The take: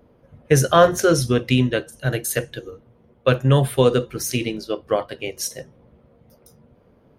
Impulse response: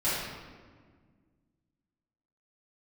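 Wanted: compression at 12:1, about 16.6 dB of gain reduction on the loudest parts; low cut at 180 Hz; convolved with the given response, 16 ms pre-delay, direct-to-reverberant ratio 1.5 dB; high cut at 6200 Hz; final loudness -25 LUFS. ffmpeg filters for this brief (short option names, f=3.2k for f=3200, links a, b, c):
-filter_complex "[0:a]highpass=180,lowpass=6.2k,acompressor=threshold=-25dB:ratio=12,asplit=2[a][b];[1:a]atrim=start_sample=2205,adelay=16[c];[b][c]afir=irnorm=-1:irlink=0,volume=-12.5dB[d];[a][d]amix=inputs=2:normalize=0,volume=4dB"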